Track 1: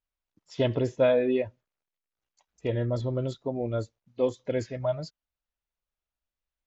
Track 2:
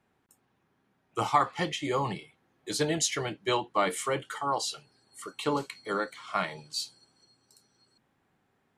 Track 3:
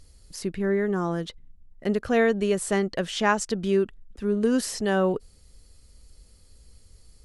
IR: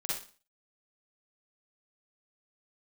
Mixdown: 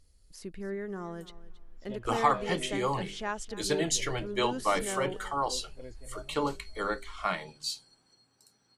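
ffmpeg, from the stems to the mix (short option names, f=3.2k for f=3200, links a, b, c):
-filter_complex "[0:a]adelay=1300,volume=-19dB,asplit=2[a][b];[b]volume=-11dB[c];[1:a]bandreject=f=50:t=h:w=6,bandreject=f=100:t=h:w=6,bandreject=f=150:t=h:w=6,bandreject=f=200:t=h:w=6,bandreject=f=250:t=h:w=6,bandreject=f=300:t=h:w=6,bandreject=f=350:t=h:w=6,bandreject=f=400:t=h:w=6,adelay=900,volume=-1dB[d];[2:a]asubboost=boost=10:cutoff=54,acontrast=39,volume=-17dB,asplit=2[e][f];[f]volume=-17dB[g];[c][g]amix=inputs=2:normalize=0,aecho=0:1:273|546|819|1092:1|0.23|0.0529|0.0122[h];[a][d][e][h]amix=inputs=4:normalize=0"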